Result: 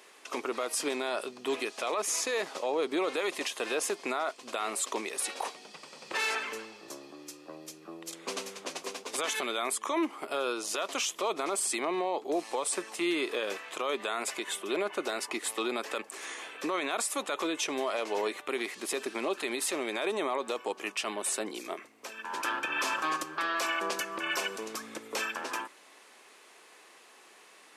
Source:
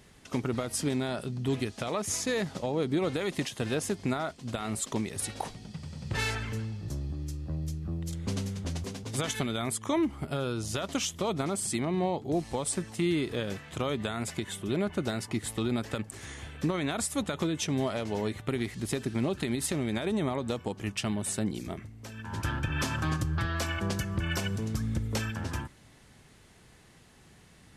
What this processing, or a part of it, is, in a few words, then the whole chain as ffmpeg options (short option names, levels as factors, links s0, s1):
laptop speaker: -af "highpass=f=370:w=0.5412,highpass=f=370:w=1.3066,equalizer=f=1100:t=o:w=0.37:g=6,equalizer=f=2500:t=o:w=0.21:g=5.5,alimiter=level_in=1.12:limit=0.0631:level=0:latency=1:release=14,volume=0.891,volume=1.5"